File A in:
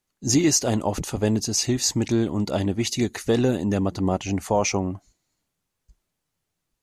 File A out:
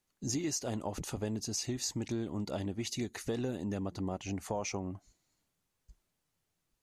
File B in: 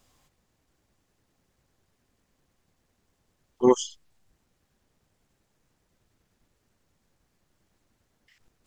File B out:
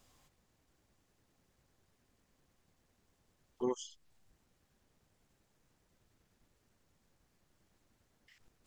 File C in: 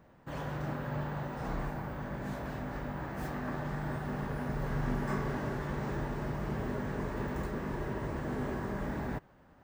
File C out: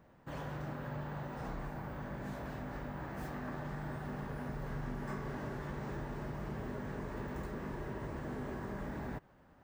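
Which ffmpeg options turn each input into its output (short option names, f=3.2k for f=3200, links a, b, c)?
-af "acompressor=threshold=-36dB:ratio=2.5,volume=-2.5dB"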